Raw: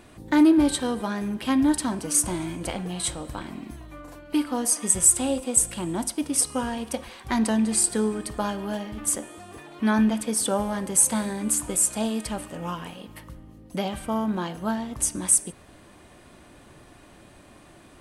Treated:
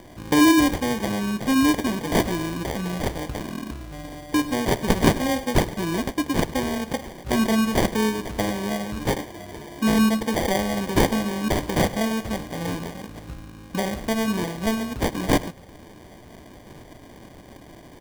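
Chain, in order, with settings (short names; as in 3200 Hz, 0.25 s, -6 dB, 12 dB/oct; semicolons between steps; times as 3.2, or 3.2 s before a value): in parallel at -1 dB: compressor, threshold -32 dBFS, peak gain reduction 18 dB; on the sum: sample-and-hold 33×; echo 0.102 s -17.5 dB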